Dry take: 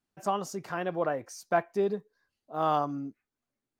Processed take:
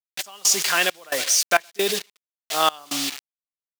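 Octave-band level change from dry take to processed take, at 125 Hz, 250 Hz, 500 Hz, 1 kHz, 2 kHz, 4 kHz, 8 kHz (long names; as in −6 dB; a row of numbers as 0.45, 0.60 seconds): −5.5, 0.0, +2.5, +4.0, +16.0, +25.5, +26.5 decibels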